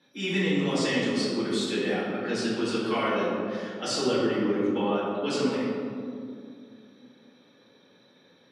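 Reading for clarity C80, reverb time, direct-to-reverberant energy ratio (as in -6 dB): 0.5 dB, 2.3 s, -11.0 dB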